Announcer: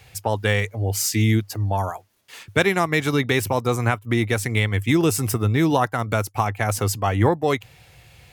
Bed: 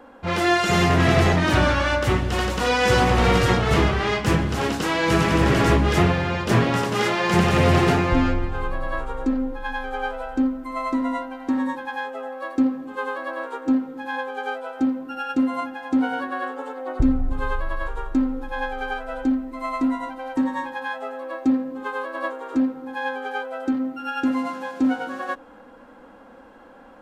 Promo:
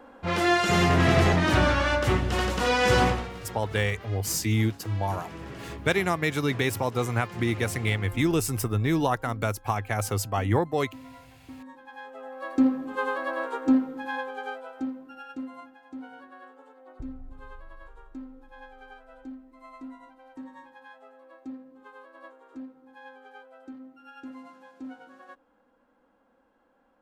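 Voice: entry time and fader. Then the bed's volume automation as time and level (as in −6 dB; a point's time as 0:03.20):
3.30 s, −5.5 dB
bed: 0:03.07 −3 dB
0:03.30 −22 dB
0:11.58 −22 dB
0:12.66 −0.5 dB
0:13.80 −0.5 dB
0:15.85 −20 dB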